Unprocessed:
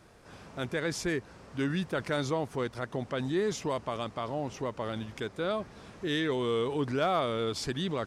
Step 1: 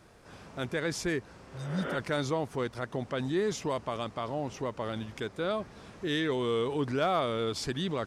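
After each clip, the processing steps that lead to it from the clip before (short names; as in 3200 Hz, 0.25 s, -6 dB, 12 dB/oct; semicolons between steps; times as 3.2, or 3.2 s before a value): spectral repair 1.48–1.93, 220–3600 Hz both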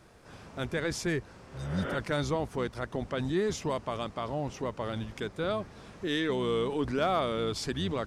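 octaver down 1 oct, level -6 dB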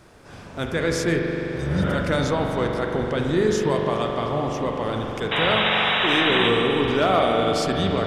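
painted sound noise, 5.31–6.49, 540–3900 Hz -30 dBFS; spring tank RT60 3.9 s, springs 42 ms, chirp 40 ms, DRR 0.5 dB; gain +6.5 dB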